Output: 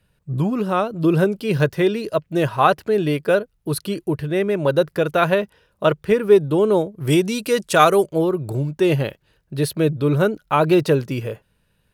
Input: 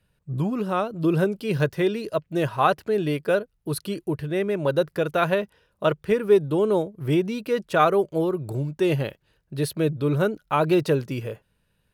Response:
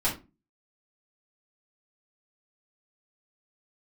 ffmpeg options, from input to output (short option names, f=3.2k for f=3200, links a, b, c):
-filter_complex "[0:a]asettb=1/sr,asplit=3[a][b][c];[a]atrim=end=7.074[d];[b]atrim=start=7.07:end=8.06,asetpts=PTS-STARTPTS,afade=t=in:d=0.004:c=qsin,afade=t=out:st=0.986:d=0.004:c=qsin,equalizer=f=8.5k:t=o:w=1.9:g=14.5[e];[c]atrim=start=8.056[f];[d][e]acrossfade=d=0.004:c1=hsin:c2=qsin[g];[g][f]acrossfade=d=0.004:c1=qsin:c2=hsin,volume=4.5dB"